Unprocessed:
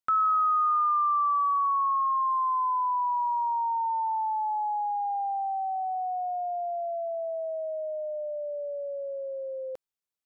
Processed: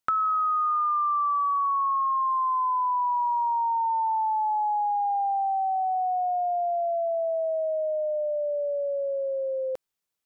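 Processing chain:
downward compressor, threshold −30 dBFS, peak gain reduction 7.5 dB
level +6.5 dB

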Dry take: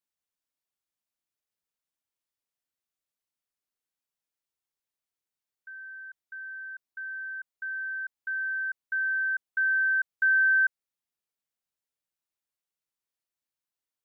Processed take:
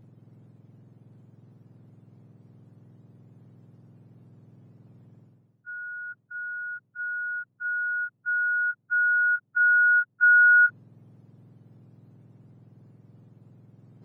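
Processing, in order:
frequency axis turned over on the octave scale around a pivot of 1,500 Hz
reversed playback
upward compression, threshold −42 dBFS
reversed playback
level +6.5 dB

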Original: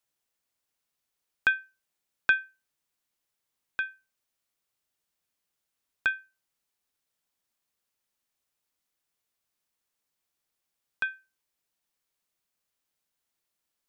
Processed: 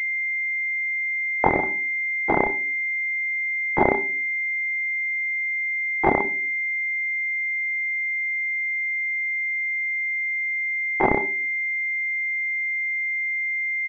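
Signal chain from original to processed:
running median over 41 samples
comb filter 7.3 ms, depth 60%
in parallel at −1.5 dB: compressor whose output falls as the input rises −38 dBFS, ratio −0.5
on the sum: leveller curve on the samples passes 3
pitch shifter +5 semitones
high-pass filter 200 Hz 24 dB per octave
parametric band 310 Hz −4.5 dB 0.63 octaves
on a send: single-tap delay 93 ms −20 dB
on the sum: gate pattern "xx.xxxxxxx.xxxx" 171 BPM −60 dB
rectangular room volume 36 cubic metres, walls mixed, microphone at 1.6 metres
boost into a limiter +16.5 dB
switching amplifier with a slow clock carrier 2,100 Hz

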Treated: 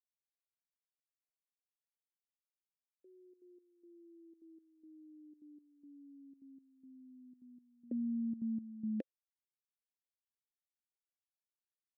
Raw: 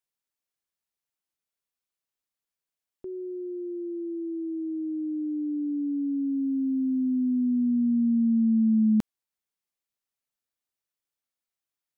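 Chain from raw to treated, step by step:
noise gate with hold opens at −20 dBFS
formant filter e
parametric band 300 Hz +14 dB 1.2 octaves
gate pattern "xxxx.xx...xx" 180 BPM −12 dB
level −1.5 dB

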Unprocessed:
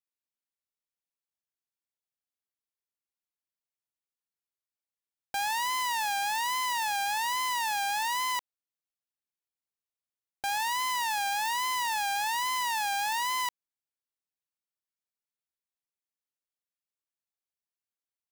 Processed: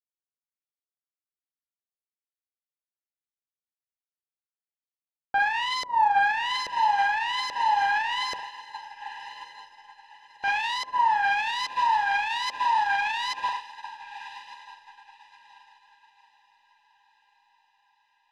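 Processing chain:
flutter between parallel walls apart 6.7 metres, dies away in 0.41 s
auto-filter low-pass saw up 1.2 Hz 530–5,000 Hz
in parallel at −11.5 dB: soft clipping −28 dBFS, distortion −10 dB
on the sum: feedback delay with all-pass diffusion 1,169 ms, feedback 61%, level −11 dB
brickwall limiter −21 dBFS, peak gain reduction 7 dB
expander for the loud parts 2.5 to 1, over −43 dBFS
level +7.5 dB

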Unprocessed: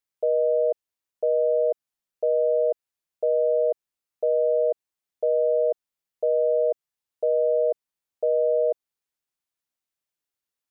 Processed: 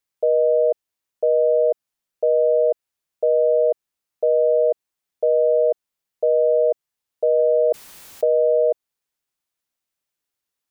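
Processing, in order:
0:07.39–0:08.25: envelope flattener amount 100%
level +4.5 dB

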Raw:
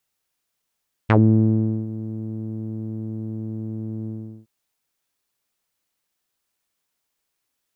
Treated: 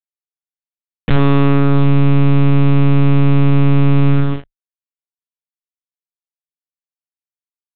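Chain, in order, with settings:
high-shelf EQ 2,200 Hz +9.5 dB
floating-point word with a short mantissa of 2 bits
fuzz pedal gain 33 dB, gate −42 dBFS
double-tracking delay 19 ms −8.5 dB
one-pitch LPC vocoder at 8 kHz 140 Hz
boost into a limiter +7 dB
level −1 dB

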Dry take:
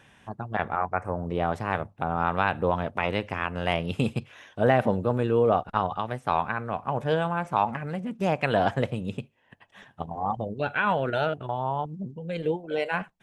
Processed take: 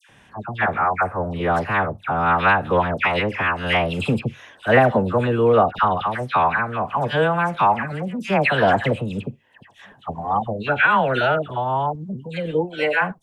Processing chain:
dynamic equaliser 1,800 Hz, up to +6 dB, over −39 dBFS, Q 0.78
all-pass dispersion lows, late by 95 ms, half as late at 1,500 Hz
level +5 dB

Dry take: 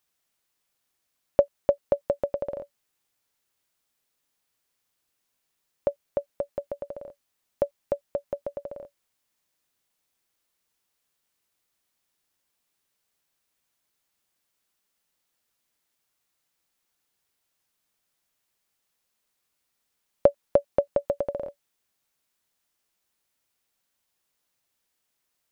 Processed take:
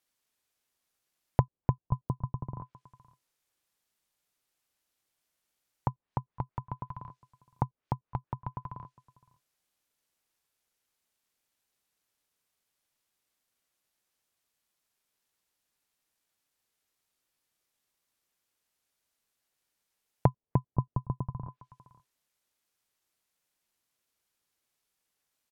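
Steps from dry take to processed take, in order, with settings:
slap from a distant wall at 88 metres, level −24 dB
ring modulation 440 Hz
treble cut that deepens with the level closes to 520 Hz, closed at −30.5 dBFS

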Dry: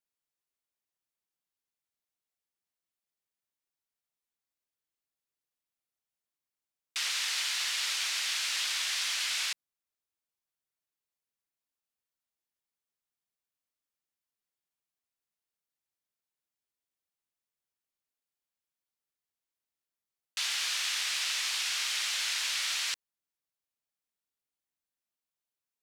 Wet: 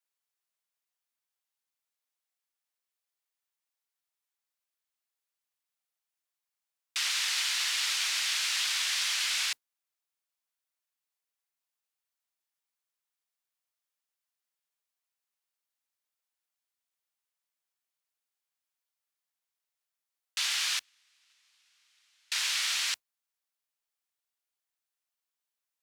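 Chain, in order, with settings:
0:20.79–0:22.32: noise gate −26 dBFS, range −39 dB
high-pass filter 650 Hz 12 dB per octave
noise that follows the level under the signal 32 dB
level +2 dB

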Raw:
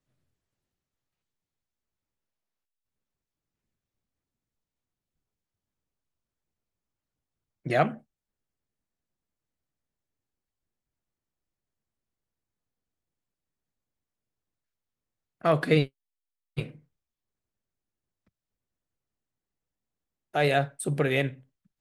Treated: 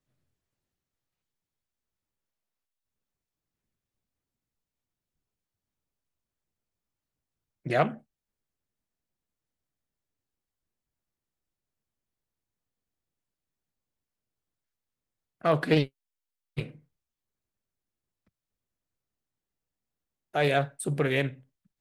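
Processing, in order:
highs frequency-modulated by the lows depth 0.26 ms
level −1 dB

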